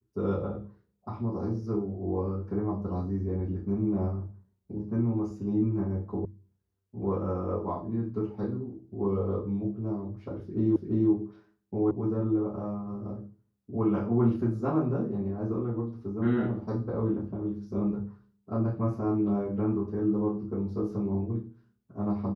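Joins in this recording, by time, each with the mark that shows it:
0:06.25: cut off before it has died away
0:10.76: the same again, the last 0.34 s
0:11.91: cut off before it has died away

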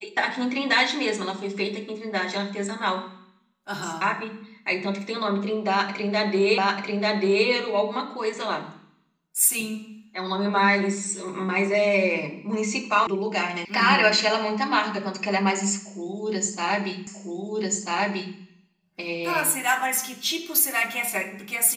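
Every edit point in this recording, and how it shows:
0:06.58: the same again, the last 0.89 s
0:13.07: cut off before it has died away
0:13.65: cut off before it has died away
0:17.07: the same again, the last 1.29 s

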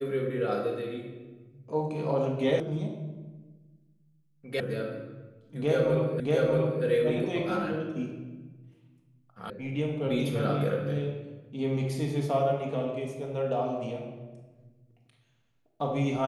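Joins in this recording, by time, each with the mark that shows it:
0:02.60: cut off before it has died away
0:04.60: cut off before it has died away
0:06.20: the same again, the last 0.63 s
0:09.50: cut off before it has died away

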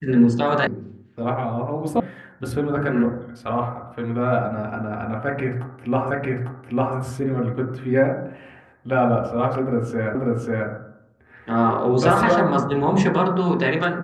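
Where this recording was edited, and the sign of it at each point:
0:00.67: cut off before it has died away
0:02.00: cut off before it has died away
0:06.11: the same again, the last 0.85 s
0:10.15: the same again, the last 0.54 s

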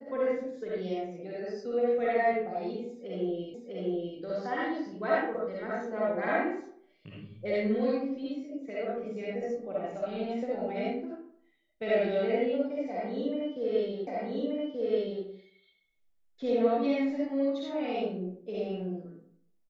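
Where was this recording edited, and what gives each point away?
0:03.54: the same again, the last 0.65 s
0:14.07: the same again, the last 1.18 s

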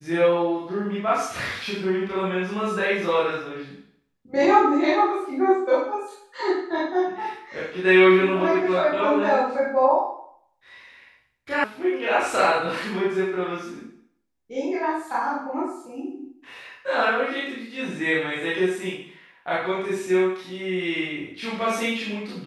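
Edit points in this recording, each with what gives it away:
0:11.64: cut off before it has died away

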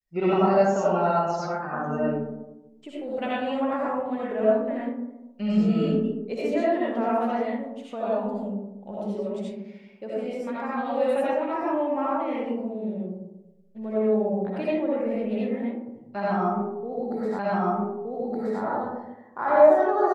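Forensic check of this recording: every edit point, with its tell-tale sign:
0:17.39: the same again, the last 1.22 s

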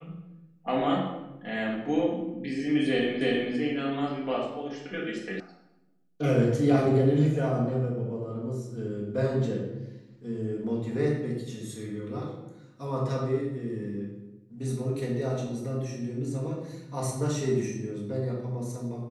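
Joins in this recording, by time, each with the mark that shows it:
0:03.21: the same again, the last 0.32 s
0:05.40: cut off before it has died away

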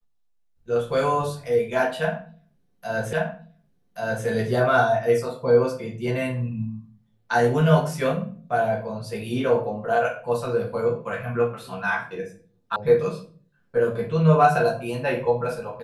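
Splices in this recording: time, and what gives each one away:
0:03.13: the same again, the last 1.13 s
0:12.76: cut off before it has died away

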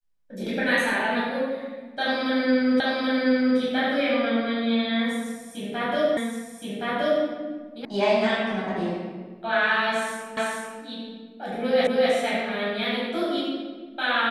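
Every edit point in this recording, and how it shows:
0:02.80: the same again, the last 0.78 s
0:06.17: the same again, the last 1.07 s
0:07.85: cut off before it has died away
0:10.37: the same again, the last 0.44 s
0:11.87: the same again, the last 0.25 s

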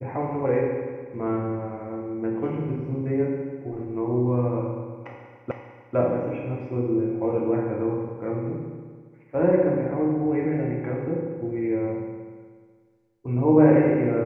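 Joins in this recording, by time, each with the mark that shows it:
0:05.51: the same again, the last 0.45 s

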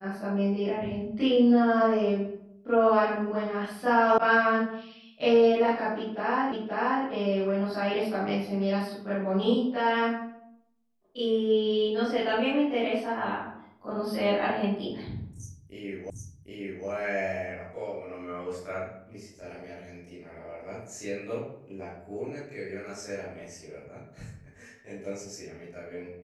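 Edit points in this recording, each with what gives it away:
0:04.18: cut off before it has died away
0:06.52: the same again, the last 0.53 s
0:16.10: the same again, the last 0.76 s

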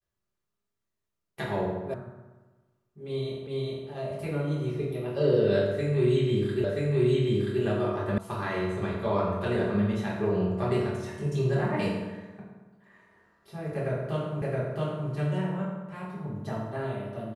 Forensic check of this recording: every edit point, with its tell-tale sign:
0:01.94: cut off before it has died away
0:03.47: the same again, the last 0.41 s
0:06.64: the same again, the last 0.98 s
0:08.18: cut off before it has died away
0:14.42: the same again, the last 0.67 s

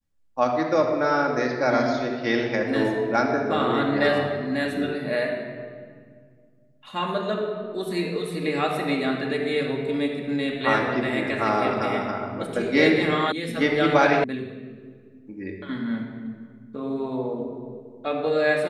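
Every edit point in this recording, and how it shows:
0:13.32: cut off before it has died away
0:14.24: cut off before it has died away

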